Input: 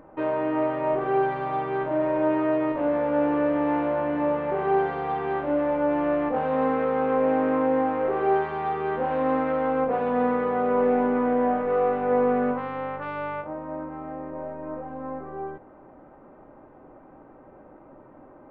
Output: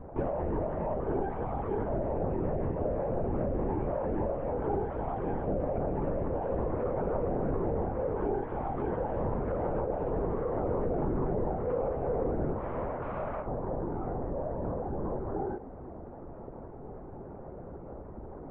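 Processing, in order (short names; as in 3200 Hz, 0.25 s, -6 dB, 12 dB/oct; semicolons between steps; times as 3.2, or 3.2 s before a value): compressor 4:1, threshold -36 dBFS, peak gain reduction 15 dB; tilt shelf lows +9.5 dB, about 1300 Hz; LPC vocoder at 8 kHz whisper; gain -1.5 dB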